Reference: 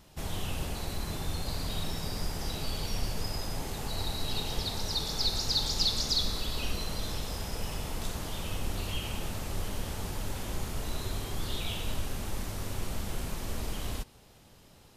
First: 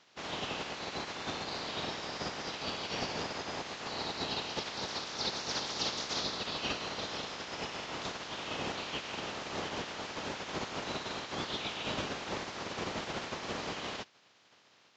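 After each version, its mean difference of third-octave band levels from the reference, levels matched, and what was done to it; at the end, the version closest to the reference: 9.0 dB: spectral limiter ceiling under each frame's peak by 24 dB; HPF 190 Hz 6 dB/oct; air absorption 130 m; gain -4 dB; Vorbis 48 kbps 16000 Hz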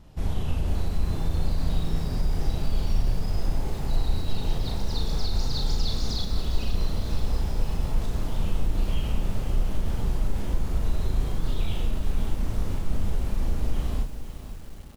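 5.0 dB: tilt -2.5 dB/oct; limiter -15.5 dBFS, peak gain reduction 7.5 dB; doubler 36 ms -4 dB; lo-fi delay 0.504 s, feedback 55%, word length 7-bit, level -11 dB; gain -1 dB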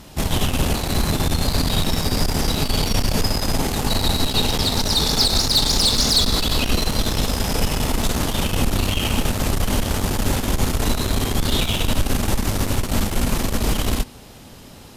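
1.5 dB: bell 250 Hz +6 dB 0.38 oct; tube stage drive 27 dB, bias 0.7; maximiser +26 dB; gain -7.5 dB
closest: third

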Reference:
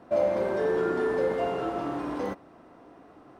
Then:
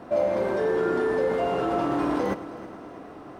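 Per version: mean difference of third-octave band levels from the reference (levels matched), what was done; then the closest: 3.5 dB: in parallel at -1 dB: negative-ratio compressor -34 dBFS, ratio -1; on the sum: multi-head echo 0.106 s, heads first and third, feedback 62%, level -17.5 dB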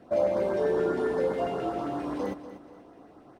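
1.5 dB: LFO notch saw up 7.5 Hz 850–3100 Hz; on a send: feedback echo 0.241 s, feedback 37%, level -13 dB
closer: second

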